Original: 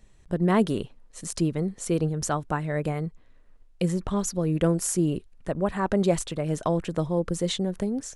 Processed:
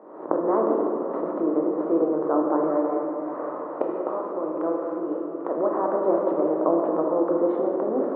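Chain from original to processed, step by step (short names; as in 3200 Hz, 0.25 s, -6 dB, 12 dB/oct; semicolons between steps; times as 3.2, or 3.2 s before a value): per-bin compression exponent 0.6; recorder AGC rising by 56 dB/s; elliptic band-pass 300–1200 Hz, stop band 80 dB; 2.77–5.52 low shelf 470 Hz -10 dB; shoebox room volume 210 m³, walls hard, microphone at 0.53 m; gain -1.5 dB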